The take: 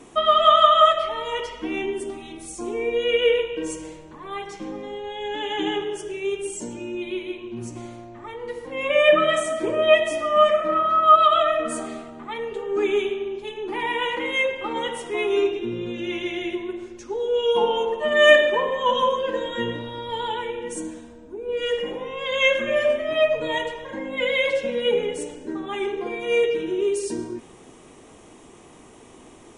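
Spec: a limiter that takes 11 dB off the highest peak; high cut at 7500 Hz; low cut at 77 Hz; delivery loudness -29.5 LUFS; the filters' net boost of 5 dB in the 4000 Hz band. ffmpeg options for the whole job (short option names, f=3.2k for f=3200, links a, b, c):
-af "highpass=77,lowpass=7.5k,equalizer=f=4k:t=o:g=7.5,volume=-5.5dB,alimiter=limit=-18dB:level=0:latency=1"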